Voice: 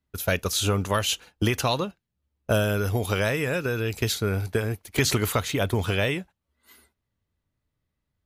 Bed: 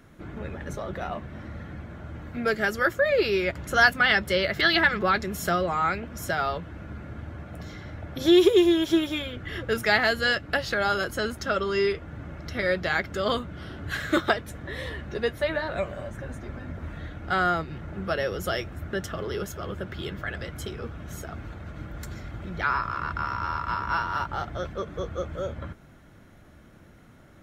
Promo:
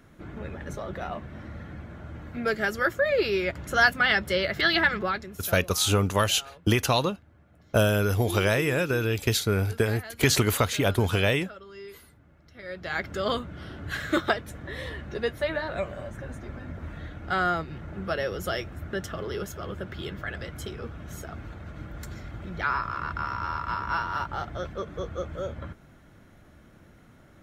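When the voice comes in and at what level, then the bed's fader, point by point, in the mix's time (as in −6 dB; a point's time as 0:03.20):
5.25 s, +1.0 dB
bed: 0:04.96 −1.5 dB
0:05.61 −19 dB
0:12.53 −19 dB
0:13.04 −1.5 dB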